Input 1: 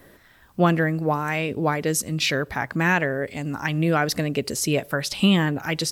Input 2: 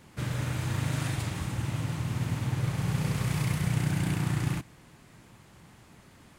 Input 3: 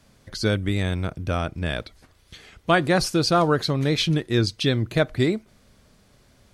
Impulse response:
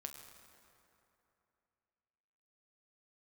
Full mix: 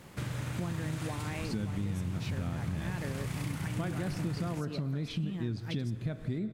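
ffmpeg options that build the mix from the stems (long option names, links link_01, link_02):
-filter_complex "[0:a]volume=-10.5dB[link_01];[1:a]volume=1.5dB[link_02];[2:a]bass=frequency=250:gain=10,treble=frequency=4000:gain=-5,adelay=1100,volume=-8.5dB,asplit=2[link_03][link_04];[link_04]volume=-3dB[link_05];[link_01][link_03]amix=inputs=2:normalize=0,equalizer=frequency=210:width=1.1:gain=11.5,acompressor=threshold=-26dB:ratio=2.5,volume=0dB[link_06];[3:a]atrim=start_sample=2205[link_07];[link_05][link_07]afir=irnorm=-1:irlink=0[link_08];[link_02][link_06][link_08]amix=inputs=3:normalize=0,acompressor=threshold=-35dB:ratio=3"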